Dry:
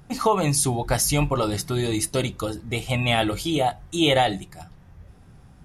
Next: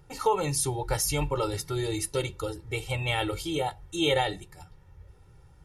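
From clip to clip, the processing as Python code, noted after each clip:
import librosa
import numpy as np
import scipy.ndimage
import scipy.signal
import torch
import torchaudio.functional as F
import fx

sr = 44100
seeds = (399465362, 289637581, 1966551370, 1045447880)

y = x + 0.97 * np.pad(x, (int(2.2 * sr / 1000.0), 0))[:len(x)]
y = y * 10.0 ** (-8.5 / 20.0)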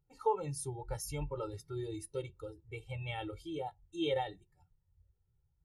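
y = fx.spectral_expand(x, sr, expansion=1.5)
y = y * 10.0 ** (-7.0 / 20.0)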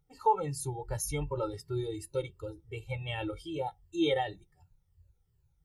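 y = fx.spec_ripple(x, sr, per_octave=1.4, drift_hz=-2.7, depth_db=10)
y = y * 10.0 ** (4.0 / 20.0)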